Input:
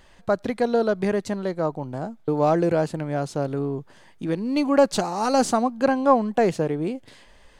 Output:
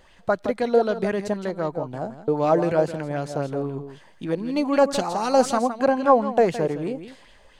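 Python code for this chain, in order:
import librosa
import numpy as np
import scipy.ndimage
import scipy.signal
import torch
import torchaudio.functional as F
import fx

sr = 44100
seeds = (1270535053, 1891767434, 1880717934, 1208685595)

y = x + 10.0 ** (-10.5 / 20.0) * np.pad(x, (int(165 * sr / 1000.0), 0))[:len(x)]
y = fx.bell_lfo(y, sr, hz=3.9, low_hz=490.0, high_hz=3400.0, db=8)
y = y * 10.0 ** (-2.5 / 20.0)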